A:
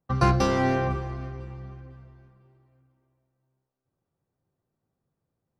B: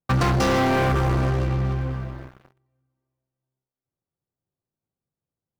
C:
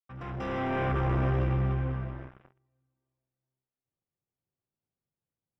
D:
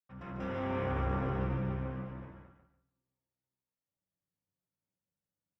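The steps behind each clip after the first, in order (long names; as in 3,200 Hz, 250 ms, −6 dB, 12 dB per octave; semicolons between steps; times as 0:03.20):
downward compressor 12 to 1, threshold −27 dBFS, peak gain reduction 12.5 dB; leveller curve on the samples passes 5
fade in at the beginning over 1.39 s; Savitzky-Golay smoothing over 25 samples; level −4 dB
repeating echo 145 ms, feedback 25%, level −6 dB; convolution reverb RT60 0.50 s, pre-delay 3 ms, DRR −1 dB; level −8.5 dB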